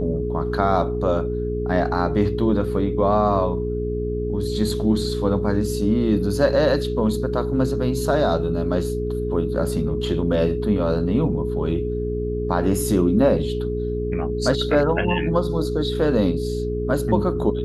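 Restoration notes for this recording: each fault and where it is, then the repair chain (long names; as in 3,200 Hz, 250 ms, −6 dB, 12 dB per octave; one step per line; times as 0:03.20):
mains hum 60 Hz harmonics 6 −27 dBFS
whistle 420 Hz −25 dBFS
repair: hum removal 60 Hz, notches 6
notch filter 420 Hz, Q 30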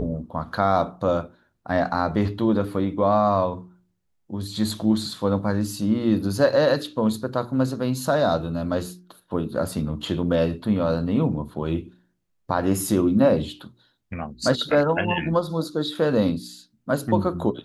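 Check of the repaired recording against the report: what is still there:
none of them is left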